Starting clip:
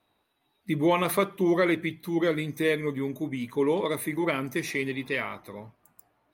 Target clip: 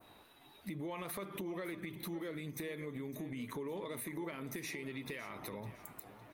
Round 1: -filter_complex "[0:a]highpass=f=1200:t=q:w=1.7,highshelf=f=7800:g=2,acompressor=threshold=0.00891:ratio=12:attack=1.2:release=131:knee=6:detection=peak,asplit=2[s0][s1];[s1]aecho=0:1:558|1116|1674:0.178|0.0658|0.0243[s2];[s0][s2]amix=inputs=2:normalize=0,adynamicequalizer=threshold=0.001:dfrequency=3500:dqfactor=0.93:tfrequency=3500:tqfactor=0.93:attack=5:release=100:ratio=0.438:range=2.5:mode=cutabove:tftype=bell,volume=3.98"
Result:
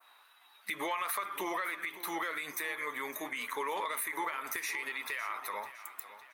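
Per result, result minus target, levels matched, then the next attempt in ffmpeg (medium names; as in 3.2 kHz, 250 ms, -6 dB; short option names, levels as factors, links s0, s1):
compression: peak gain reduction -9 dB; 1 kHz band +7.0 dB
-filter_complex "[0:a]highpass=f=1200:t=q:w=1.7,highshelf=f=7800:g=2,acompressor=threshold=0.00299:ratio=12:attack=1.2:release=131:knee=6:detection=peak,asplit=2[s0][s1];[s1]aecho=0:1:558|1116|1674:0.178|0.0658|0.0243[s2];[s0][s2]amix=inputs=2:normalize=0,adynamicequalizer=threshold=0.001:dfrequency=3500:dqfactor=0.93:tfrequency=3500:tqfactor=0.93:attack=5:release=100:ratio=0.438:range=2.5:mode=cutabove:tftype=bell,volume=3.98"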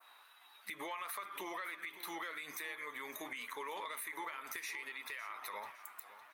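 1 kHz band +6.0 dB
-filter_complex "[0:a]highshelf=f=7800:g=2,acompressor=threshold=0.00299:ratio=12:attack=1.2:release=131:knee=6:detection=peak,asplit=2[s0][s1];[s1]aecho=0:1:558|1116|1674:0.178|0.0658|0.0243[s2];[s0][s2]amix=inputs=2:normalize=0,adynamicequalizer=threshold=0.001:dfrequency=3500:dqfactor=0.93:tfrequency=3500:tqfactor=0.93:attack=5:release=100:ratio=0.438:range=2.5:mode=cutabove:tftype=bell,volume=3.98"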